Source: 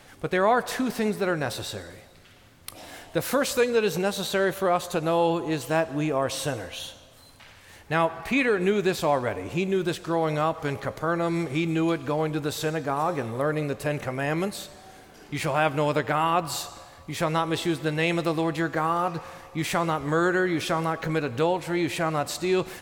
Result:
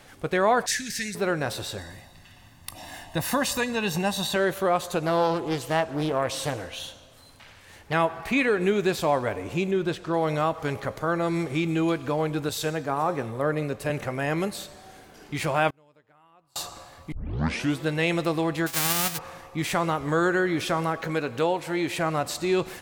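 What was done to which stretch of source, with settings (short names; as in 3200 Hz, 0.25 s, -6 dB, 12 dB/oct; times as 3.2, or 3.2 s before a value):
0.66–1.15 EQ curve 120 Hz 0 dB, 360 Hz -17 dB, 1200 Hz -28 dB, 1700 Hz +6 dB, 3100 Hz +1 dB, 6200 Hz +13 dB, 15000 Hz -1 dB
1.78–4.36 comb 1.1 ms, depth 67%
5.06–7.93 Doppler distortion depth 0.46 ms
9.71–10.14 high shelf 6300 Hz -11.5 dB
12.49–13.9 three-band expander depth 40%
15.7–16.56 flipped gate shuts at -29 dBFS, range -35 dB
17.12 tape start 0.66 s
18.66–19.17 spectral whitening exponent 0.1
21.01–21.99 low shelf 110 Hz -11 dB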